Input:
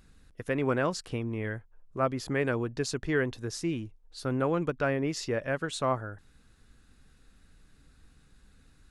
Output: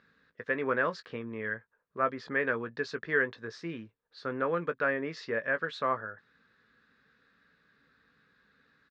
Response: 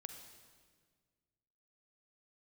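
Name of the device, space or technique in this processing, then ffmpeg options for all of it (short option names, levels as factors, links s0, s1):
kitchen radio: -filter_complex "[0:a]highpass=230,equalizer=f=320:t=q:w=4:g=-8,equalizer=f=480:t=q:w=4:g=3,equalizer=f=750:t=q:w=4:g=-7,equalizer=f=1200:t=q:w=4:g=4,equalizer=f=1700:t=q:w=4:g=9,equalizer=f=2900:t=q:w=4:g=-5,lowpass=f=4200:w=0.5412,lowpass=f=4200:w=1.3066,asplit=2[s0][s1];[s1]adelay=18,volume=0.282[s2];[s0][s2]amix=inputs=2:normalize=0,volume=0.794"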